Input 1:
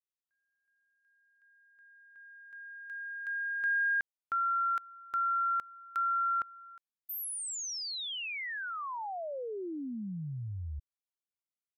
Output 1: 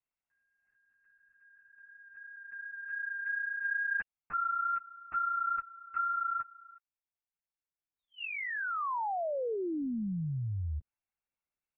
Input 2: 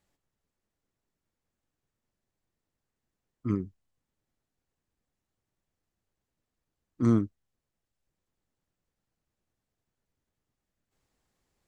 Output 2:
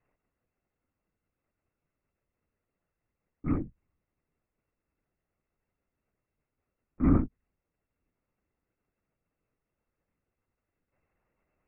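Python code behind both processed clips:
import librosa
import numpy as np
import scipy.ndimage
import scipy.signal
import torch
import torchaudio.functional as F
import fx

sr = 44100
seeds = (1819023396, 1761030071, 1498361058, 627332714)

y = scipy.signal.sosfilt(scipy.signal.ellip(6, 1.0, 50, 2800.0, 'lowpass', fs=sr, output='sos'), x)
y = fx.rider(y, sr, range_db=4, speed_s=0.5)
y = fx.lpc_vocoder(y, sr, seeds[0], excitation='whisper', order=8)
y = F.gain(torch.from_numpy(y), 1.0).numpy()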